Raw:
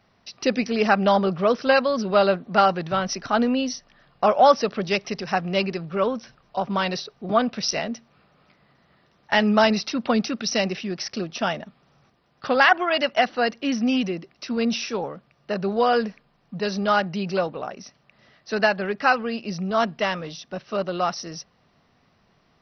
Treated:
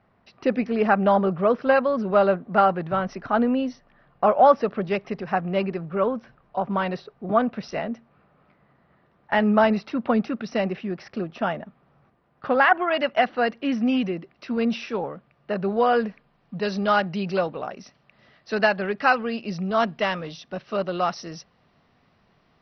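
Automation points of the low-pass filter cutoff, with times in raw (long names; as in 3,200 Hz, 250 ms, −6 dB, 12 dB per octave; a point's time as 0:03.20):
0:12.59 1,800 Hz
0:13.14 2,600 Hz
0:15.95 2,600 Hz
0:16.72 4,300 Hz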